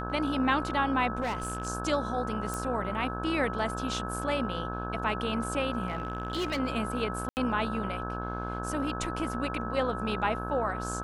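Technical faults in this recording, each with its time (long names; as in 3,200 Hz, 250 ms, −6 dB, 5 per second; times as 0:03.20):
mains buzz 60 Hz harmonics 28 −36 dBFS
whistle 1,300 Hz −37 dBFS
0:01.21–0:01.68: clipping −27 dBFS
0:02.54: click
0:05.87–0:06.60: clipping −26.5 dBFS
0:07.29–0:07.37: drop-out 79 ms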